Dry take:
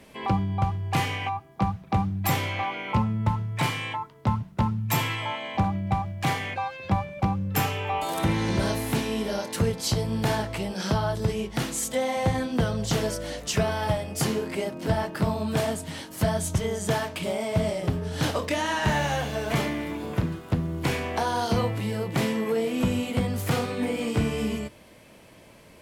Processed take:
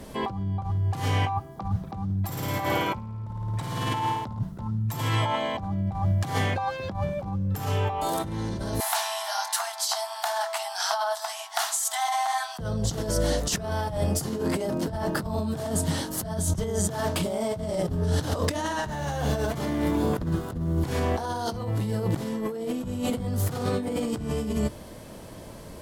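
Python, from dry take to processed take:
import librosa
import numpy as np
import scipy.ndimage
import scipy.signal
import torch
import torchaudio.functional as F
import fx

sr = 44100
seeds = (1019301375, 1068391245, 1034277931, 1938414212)

y = fx.room_flutter(x, sr, wall_m=9.3, rt60_s=1.1, at=(2.25, 4.39))
y = fx.brickwall_highpass(y, sr, low_hz=640.0, at=(8.8, 12.59))
y = fx.peak_eq(y, sr, hz=2400.0, db=-11.0, octaves=0.78)
y = fx.over_compress(y, sr, threshold_db=-33.0, ratio=-1.0)
y = fx.low_shelf(y, sr, hz=83.0, db=8.0)
y = y * librosa.db_to_amplitude(3.5)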